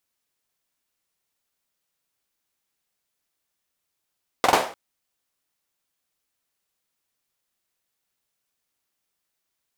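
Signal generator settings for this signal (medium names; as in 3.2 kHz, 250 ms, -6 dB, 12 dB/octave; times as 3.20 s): hand clap length 0.30 s, bursts 3, apart 45 ms, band 670 Hz, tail 0.40 s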